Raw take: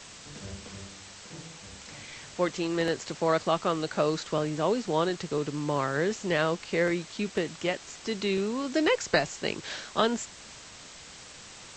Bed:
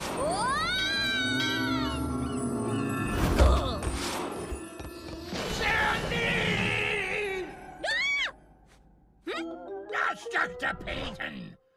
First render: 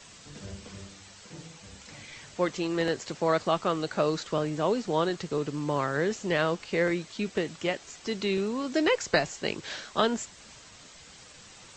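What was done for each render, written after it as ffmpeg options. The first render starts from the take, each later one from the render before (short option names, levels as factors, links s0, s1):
-af "afftdn=nr=6:nf=-48"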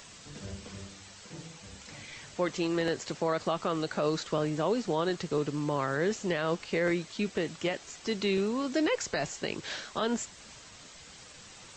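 -af "alimiter=limit=0.112:level=0:latency=1:release=62,acompressor=mode=upward:threshold=0.00251:ratio=2.5"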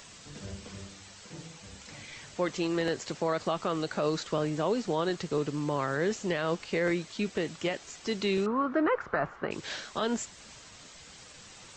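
-filter_complex "[0:a]asettb=1/sr,asplit=3[s0][s1][s2];[s0]atrim=end=8.464[s3];[s1]atrim=start=8.46:end=9.51,asetpts=PTS-STARTPTS,afade=t=in:d=0.004:c=qsin,afade=t=out:st=1.046:d=0.004:c=qsin,lowpass=f=1300:t=q:w=4.3[s4];[s2]atrim=start=9.506[s5];[s3][s4]acrossfade=d=0.004:c1=hsin:c2=qsin[s6];[s6][s5]acrossfade=d=0.004:c1=qsin:c2=hsin"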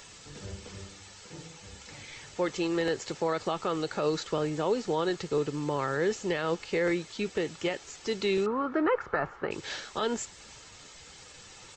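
-af "aecho=1:1:2.3:0.32"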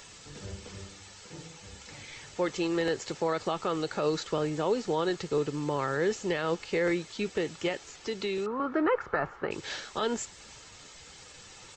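-filter_complex "[0:a]asettb=1/sr,asplit=3[s0][s1][s2];[s0]atrim=end=7.884[s3];[s1]atrim=start=7.88:end=8.6,asetpts=PTS-STARTPTS,afade=t=in:d=0.004:c=qsin,afade=t=out:st=0.716:d=0.004:c=qsin,acrossover=split=130|350|5500[s4][s5][s6][s7];[s4]acompressor=threshold=0.00158:ratio=3[s8];[s5]acompressor=threshold=0.0112:ratio=3[s9];[s6]acompressor=threshold=0.0224:ratio=3[s10];[s7]acompressor=threshold=0.002:ratio=3[s11];[s8][s9][s10][s11]amix=inputs=4:normalize=0[s12];[s2]atrim=start=8.596[s13];[s3][s12]acrossfade=d=0.004:c1=hsin:c2=qsin[s14];[s14][s13]acrossfade=d=0.004:c1=qsin:c2=hsin"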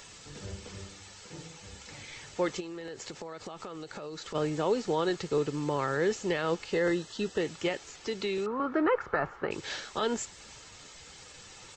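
-filter_complex "[0:a]asplit=3[s0][s1][s2];[s0]afade=t=out:st=2.59:d=0.02[s3];[s1]acompressor=threshold=0.0141:ratio=10:attack=3.2:release=140:knee=1:detection=peak,afade=t=in:st=2.59:d=0.02,afade=t=out:st=4.34:d=0.02[s4];[s2]afade=t=in:st=4.34:d=0.02[s5];[s3][s4][s5]amix=inputs=3:normalize=0,asettb=1/sr,asplit=3[s6][s7][s8];[s6]atrim=end=6.734[s9];[s7]atrim=start=6.73:end=7.41,asetpts=PTS-STARTPTS,afade=t=in:d=0.004:c=qsin,afade=t=out:st=0.676:d=0.004:c=qsin,asuperstop=centerf=2300:order=8:qfactor=5[s10];[s8]atrim=start=7.406[s11];[s9][s10]acrossfade=d=0.004:c1=hsin:c2=qsin[s12];[s12][s11]acrossfade=d=0.004:c1=qsin:c2=hsin"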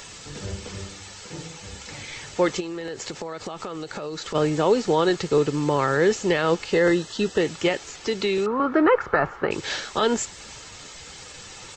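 -af "volume=2.66"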